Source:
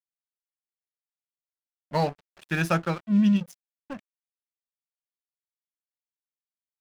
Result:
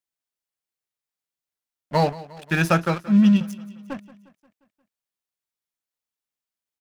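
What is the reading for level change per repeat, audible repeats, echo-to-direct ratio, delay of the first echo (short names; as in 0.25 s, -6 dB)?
-5.0 dB, 4, -17.0 dB, 0.177 s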